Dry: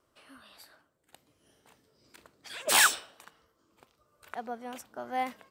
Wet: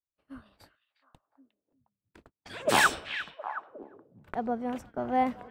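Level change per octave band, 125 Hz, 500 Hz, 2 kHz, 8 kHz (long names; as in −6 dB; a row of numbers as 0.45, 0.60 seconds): can't be measured, +7.0 dB, +1.0 dB, −8.5 dB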